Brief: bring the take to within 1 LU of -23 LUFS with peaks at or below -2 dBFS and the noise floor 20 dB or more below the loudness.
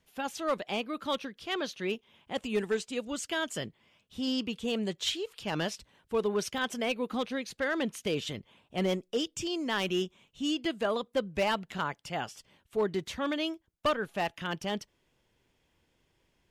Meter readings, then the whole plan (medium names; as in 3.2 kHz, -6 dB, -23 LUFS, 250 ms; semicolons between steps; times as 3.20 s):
clipped samples 0.5%; clipping level -21.5 dBFS; dropouts 2; longest dropout 1.8 ms; loudness -33.0 LUFS; peak level -21.5 dBFS; loudness target -23.0 LUFS
-> clip repair -21.5 dBFS; interpolate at 6.58/10.65 s, 1.8 ms; trim +10 dB